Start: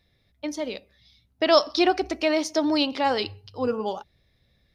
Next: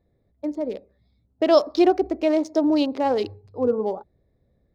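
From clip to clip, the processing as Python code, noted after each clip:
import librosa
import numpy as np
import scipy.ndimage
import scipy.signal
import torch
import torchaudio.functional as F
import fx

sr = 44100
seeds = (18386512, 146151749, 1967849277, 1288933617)

y = fx.wiener(x, sr, points=15)
y = fx.curve_eq(y, sr, hz=(130.0, 440.0, 1500.0), db=(0, 6, -6))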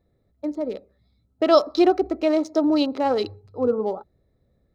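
y = fx.small_body(x, sr, hz=(1300.0, 4000.0), ring_ms=45, db=12)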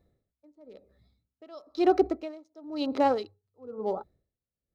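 y = x * 10.0 ** (-31 * (0.5 - 0.5 * np.cos(2.0 * np.pi * 1.0 * np.arange(len(x)) / sr)) / 20.0)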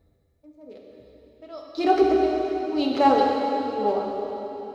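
y = fx.notch_comb(x, sr, f0_hz=180.0)
y = fx.rev_plate(y, sr, seeds[0], rt60_s=3.6, hf_ratio=1.0, predelay_ms=0, drr_db=-1.5)
y = y * librosa.db_to_amplitude(5.5)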